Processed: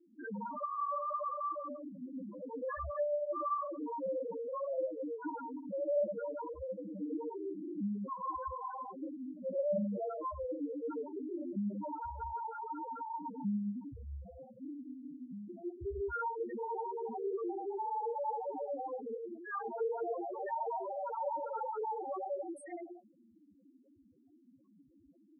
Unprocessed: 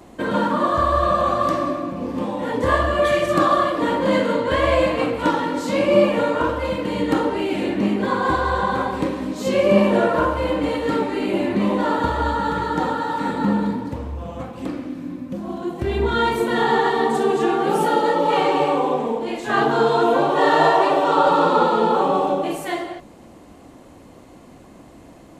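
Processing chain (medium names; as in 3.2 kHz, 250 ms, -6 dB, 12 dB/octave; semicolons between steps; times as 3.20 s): pre-emphasis filter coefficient 0.8; one-sided clip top -28.5 dBFS; loudest bins only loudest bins 2; trim +1 dB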